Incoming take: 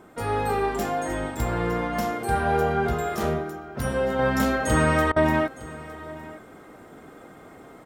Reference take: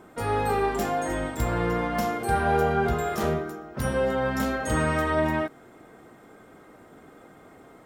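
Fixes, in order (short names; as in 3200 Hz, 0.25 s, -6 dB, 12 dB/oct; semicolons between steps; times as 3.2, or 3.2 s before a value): interpolate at 5.12, 41 ms; inverse comb 0.91 s -18.5 dB; gain 0 dB, from 4.19 s -4 dB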